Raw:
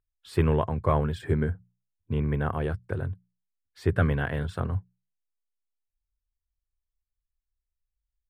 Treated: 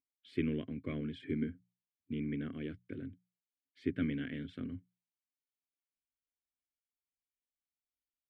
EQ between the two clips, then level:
formant filter i
+4.5 dB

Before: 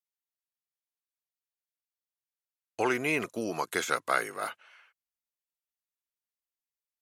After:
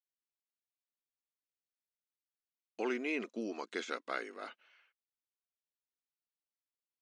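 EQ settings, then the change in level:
linear-phase brick-wall band-pass 200–10,000 Hz
high-frequency loss of the air 180 metres
parametric band 1,000 Hz −12 dB 2.6 octaves
0.0 dB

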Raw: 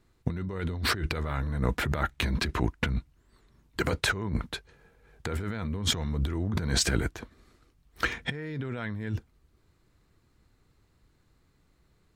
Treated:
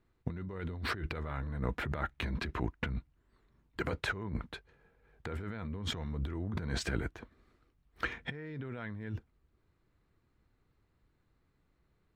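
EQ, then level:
bass and treble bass −1 dB, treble −11 dB
−6.5 dB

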